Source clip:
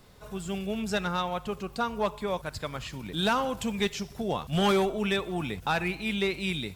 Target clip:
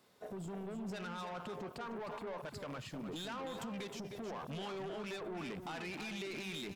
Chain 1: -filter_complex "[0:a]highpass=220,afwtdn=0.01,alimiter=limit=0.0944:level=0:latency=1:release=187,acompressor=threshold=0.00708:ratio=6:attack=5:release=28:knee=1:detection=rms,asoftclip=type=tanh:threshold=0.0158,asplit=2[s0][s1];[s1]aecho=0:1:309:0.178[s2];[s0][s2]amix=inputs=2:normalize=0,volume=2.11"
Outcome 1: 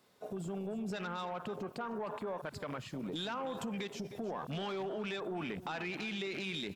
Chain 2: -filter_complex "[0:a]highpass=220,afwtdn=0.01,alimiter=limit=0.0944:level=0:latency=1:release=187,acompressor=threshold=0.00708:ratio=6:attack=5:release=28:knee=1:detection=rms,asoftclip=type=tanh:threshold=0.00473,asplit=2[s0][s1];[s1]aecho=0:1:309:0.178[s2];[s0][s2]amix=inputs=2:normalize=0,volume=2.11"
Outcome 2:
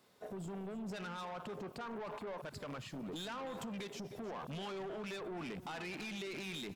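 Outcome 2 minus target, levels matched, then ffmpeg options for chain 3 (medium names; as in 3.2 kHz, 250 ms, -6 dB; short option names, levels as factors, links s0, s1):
echo-to-direct -7 dB
-filter_complex "[0:a]highpass=220,afwtdn=0.01,alimiter=limit=0.0944:level=0:latency=1:release=187,acompressor=threshold=0.00708:ratio=6:attack=5:release=28:knee=1:detection=rms,asoftclip=type=tanh:threshold=0.00473,asplit=2[s0][s1];[s1]aecho=0:1:309:0.398[s2];[s0][s2]amix=inputs=2:normalize=0,volume=2.11"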